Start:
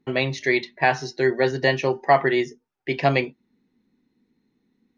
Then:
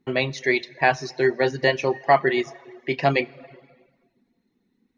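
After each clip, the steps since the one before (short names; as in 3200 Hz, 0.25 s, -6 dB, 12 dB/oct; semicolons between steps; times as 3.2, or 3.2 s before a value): plate-style reverb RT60 1.4 s, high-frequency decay 0.85×, DRR 10.5 dB; reverb removal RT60 0.54 s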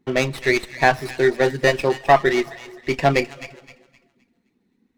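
thin delay 0.259 s, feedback 31%, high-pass 2700 Hz, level -9 dB; running maximum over 5 samples; gain +3 dB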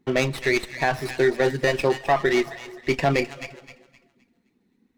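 limiter -10 dBFS, peak gain reduction 8.5 dB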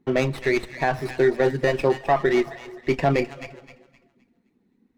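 high shelf 2000 Hz -8.5 dB; notches 60/120 Hz; gain +1.5 dB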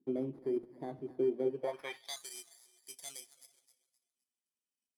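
FFT order left unsorted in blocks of 16 samples; band-pass sweep 300 Hz -> 7100 Hz, 1.45–2.2; gain -7.5 dB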